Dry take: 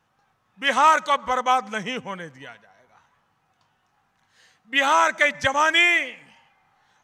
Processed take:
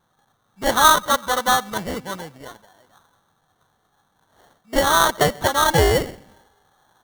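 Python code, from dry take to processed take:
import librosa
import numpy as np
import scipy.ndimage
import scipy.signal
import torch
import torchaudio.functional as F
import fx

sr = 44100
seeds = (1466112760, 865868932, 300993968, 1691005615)

y = fx.sample_hold(x, sr, seeds[0], rate_hz=2500.0, jitter_pct=0)
y = y * 10.0 ** (2.0 / 20.0)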